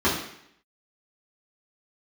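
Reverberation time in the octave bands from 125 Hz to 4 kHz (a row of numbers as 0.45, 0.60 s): 0.65, 0.70, 0.70, 0.70, 0.75, 0.70 s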